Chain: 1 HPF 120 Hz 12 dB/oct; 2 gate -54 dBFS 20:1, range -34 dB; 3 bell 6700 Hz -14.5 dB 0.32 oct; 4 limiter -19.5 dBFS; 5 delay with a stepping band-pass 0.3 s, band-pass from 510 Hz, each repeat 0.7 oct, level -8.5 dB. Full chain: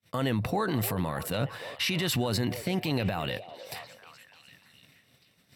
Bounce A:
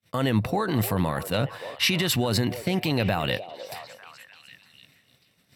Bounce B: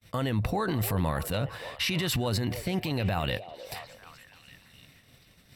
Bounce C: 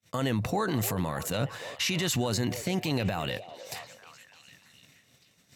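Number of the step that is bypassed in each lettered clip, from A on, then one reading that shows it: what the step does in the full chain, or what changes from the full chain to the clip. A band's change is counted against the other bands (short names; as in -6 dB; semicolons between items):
4, mean gain reduction 3.0 dB; 1, 125 Hz band +2.0 dB; 3, 8 kHz band +4.5 dB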